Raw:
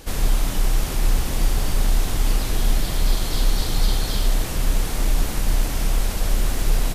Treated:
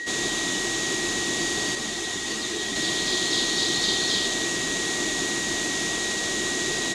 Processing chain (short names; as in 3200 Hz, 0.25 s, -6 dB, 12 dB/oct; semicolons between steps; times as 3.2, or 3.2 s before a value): whine 1900 Hz -32 dBFS; speaker cabinet 270–8600 Hz, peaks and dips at 350 Hz +8 dB, 540 Hz -7 dB, 870 Hz -5 dB, 1400 Hz -6 dB, 3700 Hz +8 dB, 6700 Hz +9 dB; 1.75–2.76 ensemble effect; gain +2.5 dB